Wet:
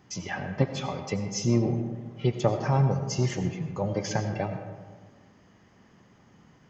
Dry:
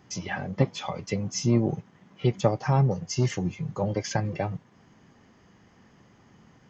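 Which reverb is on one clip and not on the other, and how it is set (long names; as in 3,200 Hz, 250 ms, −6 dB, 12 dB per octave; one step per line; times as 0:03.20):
comb and all-pass reverb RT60 1.5 s, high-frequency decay 0.45×, pre-delay 50 ms, DRR 7 dB
level −1.5 dB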